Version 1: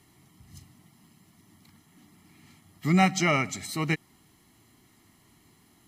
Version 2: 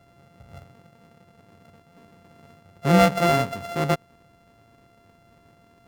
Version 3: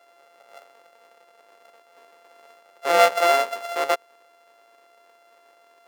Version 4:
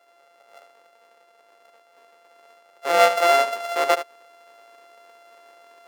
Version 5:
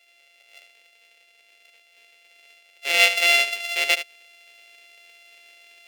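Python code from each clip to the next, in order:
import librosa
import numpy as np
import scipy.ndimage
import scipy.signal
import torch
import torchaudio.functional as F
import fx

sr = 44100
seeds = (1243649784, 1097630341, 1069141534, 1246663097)

y1 = np.r_[np.sort(x[:len(x) // 64 * 64].reshape(-1, 64), axis=1).ravel(), x[len(x) // 64 * 64:]]
y1 = fx.high_shelf(y1, sr, hz=3200.0, db=-11.5)
y1 = F.gain(torch.from_numpy(y1), 5.5).numpy()
y2 = scipy.signal.sosfilt(scipy.signal.butter(4, 470.0, 'highpass', fs=sr, output='sos'), y1)
y2 = F.gain(torch.from_numpy(y2), 3.0).numpy()
y3 = fx.rider(y2, sr, range_db=10, speed_s=2.0)
y3 = y3 + 10.0 ** (-11.5 / 20.0) * np.pad(y3, (int(74 * sr / 1000.0), 0))[:len(y3)]
y4 = fx.high_shelf_res(y3, sr, hz=1700.0, db=13.5, q=3.0)
y4 = F.gain(torch.from_numpy(y4), -9.5).numpy()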